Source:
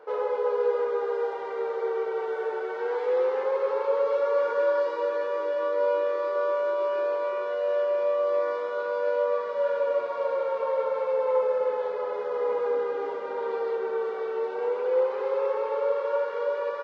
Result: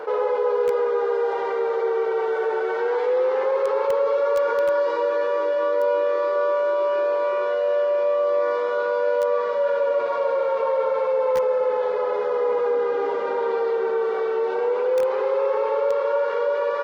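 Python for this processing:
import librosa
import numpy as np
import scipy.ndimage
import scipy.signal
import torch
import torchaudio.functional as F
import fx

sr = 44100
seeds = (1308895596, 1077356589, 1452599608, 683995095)

p1 = (np.mod(10.0 ** (16.0 / 20.0) * x + 1.0, 2.0) - 1.0) / 10.0 ** (16.0 / 20.0)
p2 = x + F.gain(torch.from_numpy(p1), -11.0).numpy()
y = fx.env_flatten(p2, sr, amount_pct=50)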